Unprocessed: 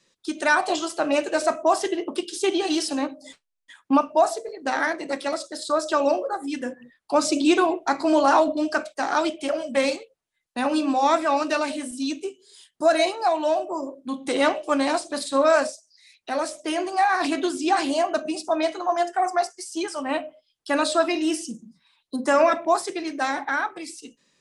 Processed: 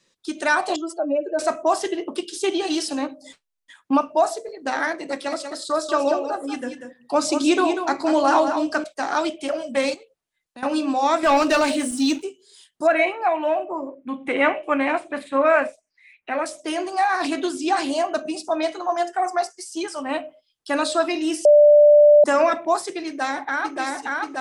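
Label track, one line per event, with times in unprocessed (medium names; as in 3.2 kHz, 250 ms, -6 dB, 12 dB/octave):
0.760000	1.390000	spectral contrast enhancement exponent 2.2
5.060000	8.840000	delay 190 ms -8 dB
9.940000	10.630000	compression 2:1, threshold -46 dBFS
11.230000	12.230000	waveshaping leveller passes 2
12.870000	16.460000	resonant high shelf 3.4 kHz -13.5 dB, Q 3
21.450000	22.240000	bleep 591 Hz -8 dBFS
23.060000	23.770000	echo throw 580 ms, feedback 80%, level -1.5 dB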